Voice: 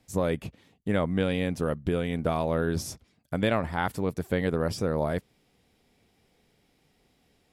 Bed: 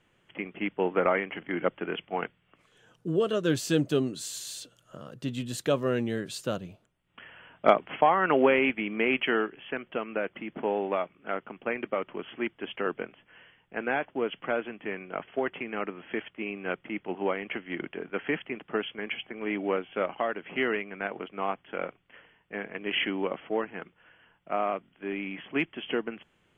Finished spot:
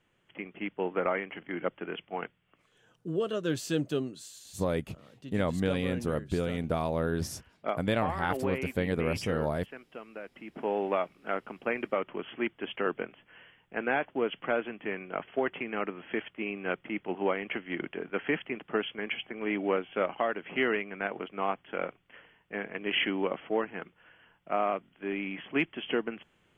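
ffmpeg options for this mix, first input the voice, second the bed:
-filter_complex "[0:a]adelay=4450,volume=0.708[s0];[1:a]volume=2.37,afade=t=out:st=3.93:d=0.41:silence=0.421697,afade=t=in:st=10.3:d=0.56:silence=0.251189[s1];[s0][s1]amix=inputs=2:normalize=0"

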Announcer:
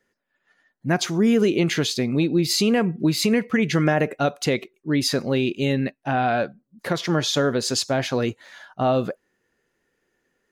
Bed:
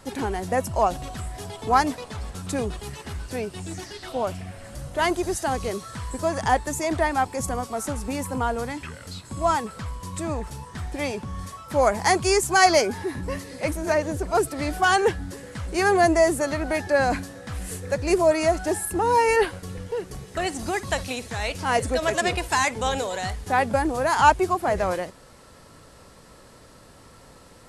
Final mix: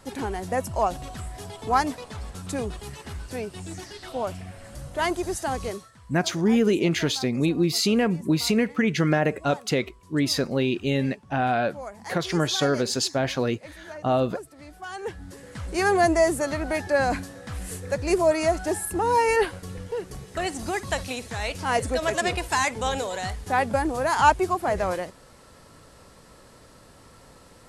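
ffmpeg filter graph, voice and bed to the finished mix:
-filter_complex "[0:a]adelay=5250,volume=0.794[s0];[1:a]volume=5.01,afade=t=out:st=5.69:d=0.22:silence=0.16788,afade=t=in:st=14.93:d=0.77:silence=0.149624[s1];[s0][s1]amix=inputs=2:normalize=0"

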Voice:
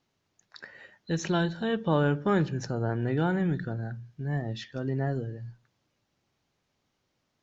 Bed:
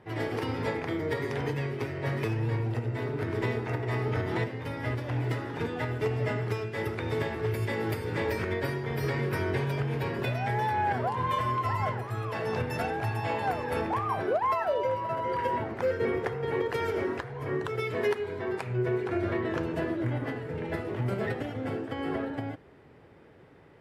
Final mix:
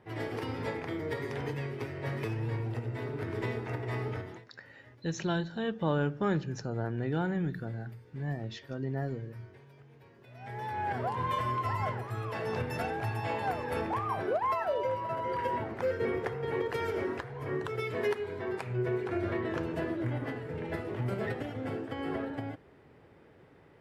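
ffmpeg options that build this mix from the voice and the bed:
-filter_complex "[0:a]adelay=3950,volume=0.596[s0];[1:a]volume=8.41,afade=t=out:st=4.03:d=0.39:silence=0.0841395,afade=t=in:st=10.28:d=0.82:silence=0.0707946[s1];[s0][s1]amix=inputs=2:normalize=0"

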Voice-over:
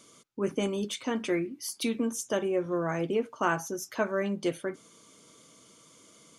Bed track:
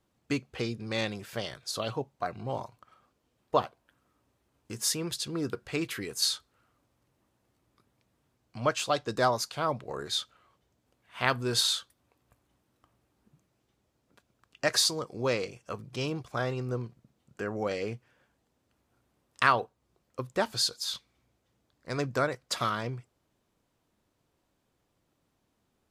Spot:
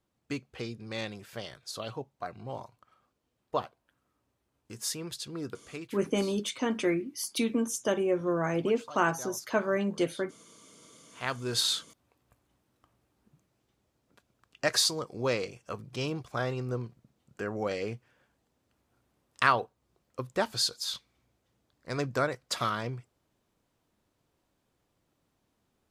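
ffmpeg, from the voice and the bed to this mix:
-filter_complex "[0:a]adelay=5550,volume=1.12[s0];[1:a]volume=4.73,afade=t=out:st=5.45:d=0.62:silence=0.199526,afade=t=in:st=10.94:d=0.77:silence=0.11885[s1];[s0][s1]amix=inputs=2:normalize=0"

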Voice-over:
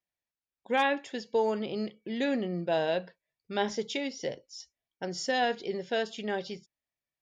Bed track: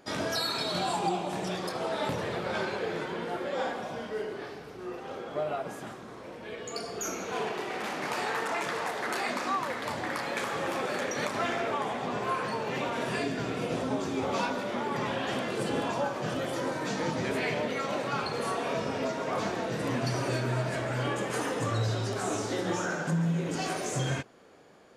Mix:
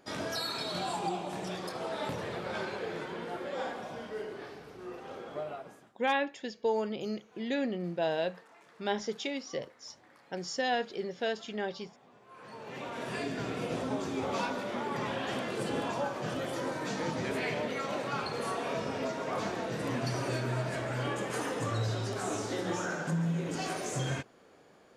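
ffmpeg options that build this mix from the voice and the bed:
-filter_complex "[0:a]adelay=5300,volume=0.75[s0];[1:a]volume=9.44,afade=t=out:st=5.29:d=0.63:silence=0.0749894,afade=t=in:st=12.29:d=1.12:silence=0.0630957[s1];[s0][s1]amix=inputs=2:normalize=0"

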